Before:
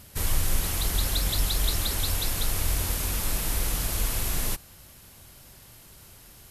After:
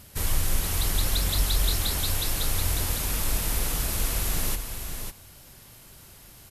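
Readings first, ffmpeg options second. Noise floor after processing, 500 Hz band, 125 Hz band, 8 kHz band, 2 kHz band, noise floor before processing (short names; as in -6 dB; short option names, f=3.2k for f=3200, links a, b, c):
-50 dBFS, +1.0 dB, +1.0 dB, +1.0 dB, +1.0 dB, -51 dBFS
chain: -af "aecho=1:1:550:0.447"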